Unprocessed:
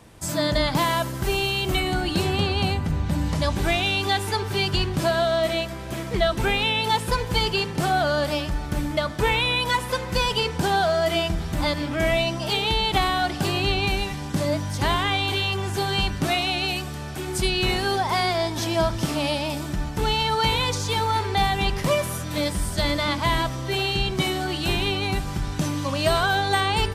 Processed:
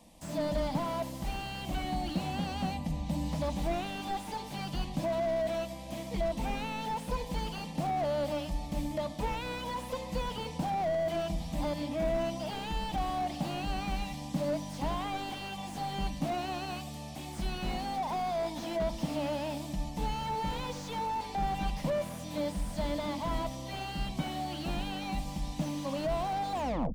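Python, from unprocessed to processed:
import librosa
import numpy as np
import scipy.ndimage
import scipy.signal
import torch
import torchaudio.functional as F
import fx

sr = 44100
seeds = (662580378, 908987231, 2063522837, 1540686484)

y = fx.tape_stop_end(x, sr, length_s=0.41)
y = fx.fixed_phaser(y, sr, hz=390.0, stages=6)
y = fx.slew_limit(y, sr, full_power_hz=42.0)
y = y * 10.0 ** (-5.0 / 20.0)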